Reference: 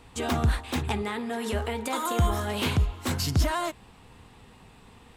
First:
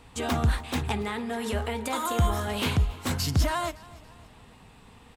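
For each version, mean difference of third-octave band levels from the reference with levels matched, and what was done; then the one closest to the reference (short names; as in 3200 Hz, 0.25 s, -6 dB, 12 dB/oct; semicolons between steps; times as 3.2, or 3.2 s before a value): 1.0 dB: bell 360 Hz -4.5 dB 0.22 oct; on a send: feedback echo 0.281 s, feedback 45%, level -21.5 dB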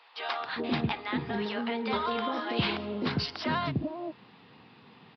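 9.5 dB: HPF 140 Hz 24 dB/oct; bands offset in time highs, lows 0.4 s, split 620 Hz; downsampling 11025 Hz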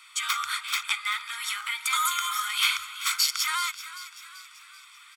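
18.5 dB: elliptic high-pass 1300 Hz, stop band 60 dB; comb 0.9 ms, depth 81%; frequency-shifting echo 0.385 s, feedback 50%, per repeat +41 Hz, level -14.5 dB; gain +6.5 dB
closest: first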